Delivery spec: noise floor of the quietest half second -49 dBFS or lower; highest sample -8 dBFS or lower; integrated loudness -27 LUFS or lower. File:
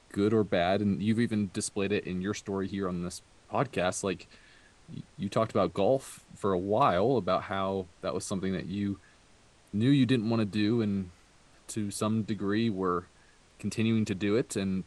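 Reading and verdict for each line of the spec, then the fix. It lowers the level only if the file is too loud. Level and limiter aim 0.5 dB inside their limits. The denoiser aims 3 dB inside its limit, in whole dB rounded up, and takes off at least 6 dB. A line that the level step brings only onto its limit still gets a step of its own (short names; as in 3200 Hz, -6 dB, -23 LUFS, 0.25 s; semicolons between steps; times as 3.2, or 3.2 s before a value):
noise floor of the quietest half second -60 dBFS: OK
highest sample -11.5 dBFS: OK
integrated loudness -30.0 LUFS: OK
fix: none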